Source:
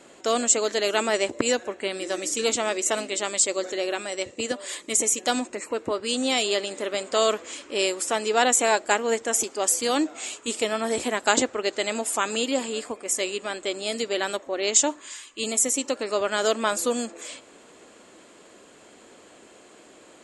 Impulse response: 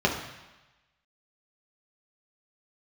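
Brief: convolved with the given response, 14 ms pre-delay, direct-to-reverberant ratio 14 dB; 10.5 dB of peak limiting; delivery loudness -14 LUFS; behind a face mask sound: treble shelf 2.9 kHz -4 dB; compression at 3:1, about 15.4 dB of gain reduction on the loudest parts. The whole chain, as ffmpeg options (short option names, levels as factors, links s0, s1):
-filter_complex "[0:a]acompressor=threshold=0.0141:ratio=3,alimiter=level_in=1.78:limit=0.0631:level=0:latency=1,volume=0.562,asplit=2[s0][s1];[1:a]atrim=start_sample=2205,adelay=14[s2];[s1][s2]afir=irnorm=-1:irlink=0,volume=0.0376[s3];[s0][s3]amix=inputs=2:normalize=0,highshelf=f=2900:g=-4,volume=21.1"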